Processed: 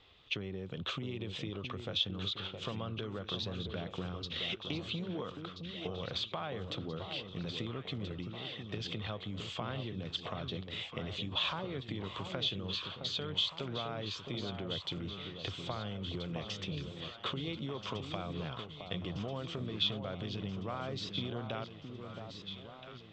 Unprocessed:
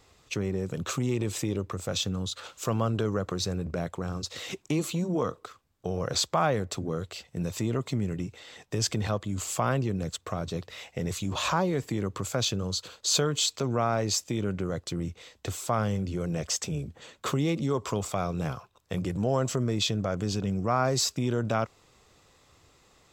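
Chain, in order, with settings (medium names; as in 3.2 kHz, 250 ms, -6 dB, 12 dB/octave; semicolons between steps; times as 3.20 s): compression, threshold -31 dBFS, peak gain reduction 11 dB; four-pole ladder low-pass 3.6 kHz, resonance 70%; echo whose repeats swap between lows and highs 665 ms, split 1.1 kHz, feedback 75%, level -6.5 dB; trim +6 dB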